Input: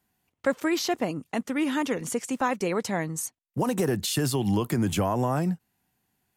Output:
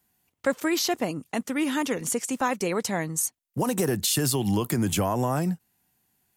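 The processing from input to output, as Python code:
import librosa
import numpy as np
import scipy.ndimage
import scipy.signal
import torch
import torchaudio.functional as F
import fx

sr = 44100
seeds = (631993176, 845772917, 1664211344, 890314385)

y = fx.high_shelf(x, sr, hz=5200.0, db=8.0)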